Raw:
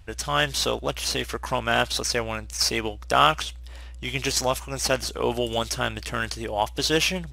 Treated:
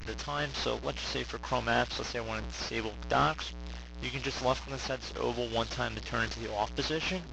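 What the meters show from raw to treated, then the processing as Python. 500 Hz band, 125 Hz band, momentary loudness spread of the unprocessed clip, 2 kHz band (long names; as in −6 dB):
−7.0 dB, −5.5 dB, 8 LU, −7.5 dB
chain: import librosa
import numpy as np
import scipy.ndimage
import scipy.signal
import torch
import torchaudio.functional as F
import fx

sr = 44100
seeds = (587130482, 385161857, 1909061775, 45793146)

y = fx.delta_mod(x, sr, bps=32000, step_db=-29.0)
y = fx.am_noise(y, sr, seeds[0], hz=5.7, depth_pct=65)
y = y * librosa.db_to_amplitude(-2.5)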